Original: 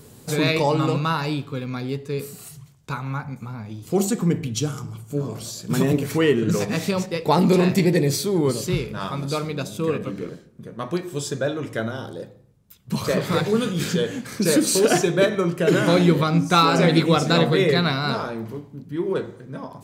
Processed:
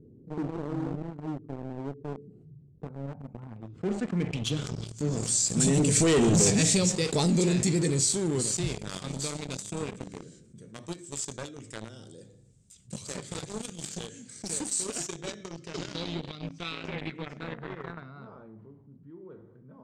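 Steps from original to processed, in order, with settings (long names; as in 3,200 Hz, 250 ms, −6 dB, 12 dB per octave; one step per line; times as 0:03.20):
source passing by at 0:06.27, 8 m/s, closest 1.5 metres
low-pass filter sweep 350 Hz → 8,100 Hz, 0:02.63–0:05.32
in parallel at −6 dB: hard clipping −25 dBFS, distortion −6 dB
on the sum: parametric band 1,000 Hz −12.5 dB 1.5 octaves
leveller curve on the samples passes 3
low-pass filter sweep 8,200 Hz → 1,100 Hz, 0:14.96–0:18.34
envelope flattener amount 50%
level −7.5 dB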